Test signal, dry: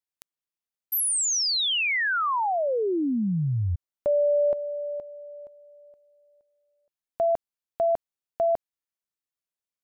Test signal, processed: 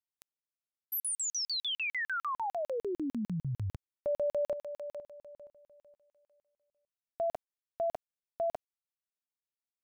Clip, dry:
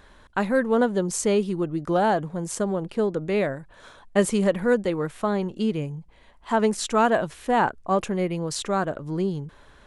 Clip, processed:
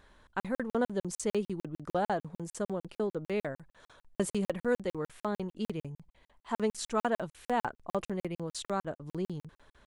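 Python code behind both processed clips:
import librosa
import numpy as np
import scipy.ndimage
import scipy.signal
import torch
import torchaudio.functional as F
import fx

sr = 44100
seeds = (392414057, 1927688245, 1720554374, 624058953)

y = fx.buffer_crackle(x, sr, first_s=0.4, period_s=0.15, block=2048, kind='zero')
y = y * 10.0 ** (-8.5 / 20.0)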